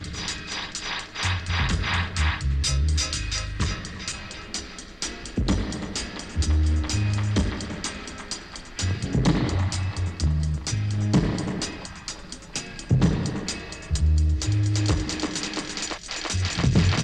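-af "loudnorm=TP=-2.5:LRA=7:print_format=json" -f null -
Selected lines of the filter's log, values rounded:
"input_i" : "-25.9",
"input_tp" : "-9.0",
"input_lra" : "2.6",
"input_thresh" : "-36.0",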